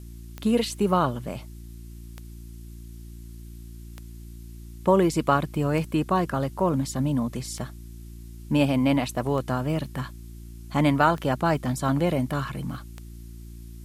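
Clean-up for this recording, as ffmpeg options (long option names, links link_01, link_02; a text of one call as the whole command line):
ffmpeg -i in.wav -af "adeclick=threshold=4,bandreject=frequency=57.4:width_type=h:width=4,bandreject=frequency=114.8:width_type=h:width=4,bandreject=frequency=172.2:width_type=h:width=4,bandreject=frequency=229.6:width_type=h:width=4,bandreject=frequency=287:width_type=h:width=4,bandreject=frequency=344.4:width_type=h:width=4,agate=range=-21dB:threshold=-33dB" out.wav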